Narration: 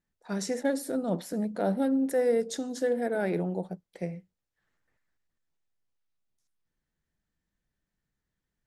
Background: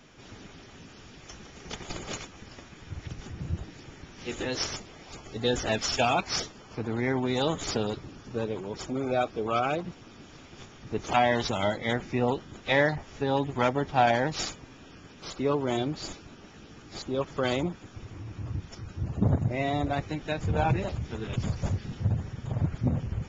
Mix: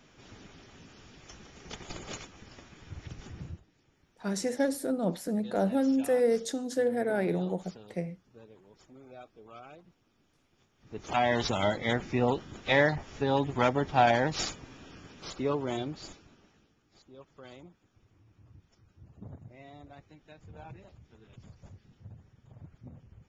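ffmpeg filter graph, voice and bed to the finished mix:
-filter_complex "[0:a]adelay=3950,volume=1[s0];[1:a]volume=7.08,afade=t=out:st=3.4:d=0.21:silence=0.133352,afade=t=in:st=10.76:d=0.68:silence=0.0841395,afade=t=out:st=14.95:d=1.8:silence=0.0841395[s1];[s0][s1]amix=inputs=2:normalize=0"

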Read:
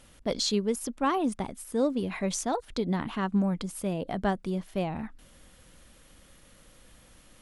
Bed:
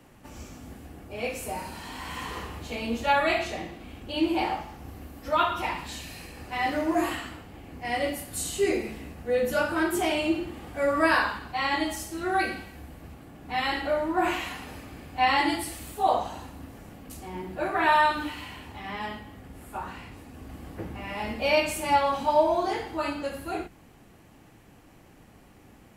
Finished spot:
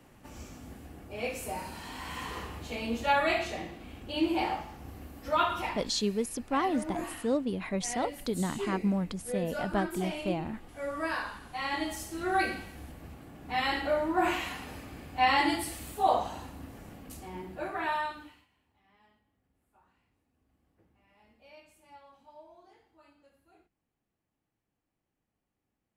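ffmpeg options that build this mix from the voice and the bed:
-filter_complex "[0:a]adelay=5500,volume=0.75[s0];[1:a]volume=2,afade=t=out:st=5.59:d=0.29:silence=0.398107,afade=t=in:st=11.24:d=1.15:silence=0.354813,afade=t=out:st=16.93:d=1.54:silence=0.0334965[s1];[s0][s1]amix=inputs=2:normalize=0"

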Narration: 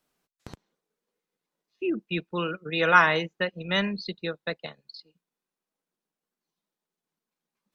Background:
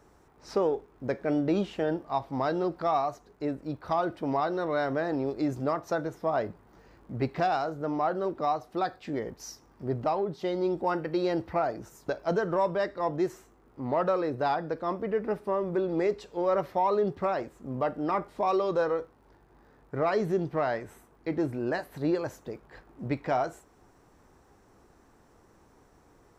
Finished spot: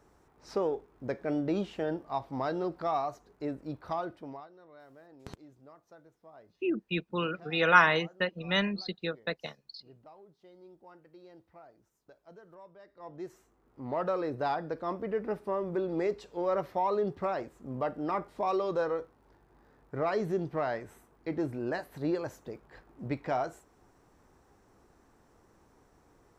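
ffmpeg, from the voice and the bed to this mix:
-filter_complex "[0:a]adelay=4800,volume=0.75[s0];[1:a]volume=8.41,afade=t=out:st=3.79:d=0.69:silence=0.0794328,afade=t=in:st=12.85:d=1.4:silence=0.0749894[s1];[s0][s1]amix=inputs=2:normalize=0"

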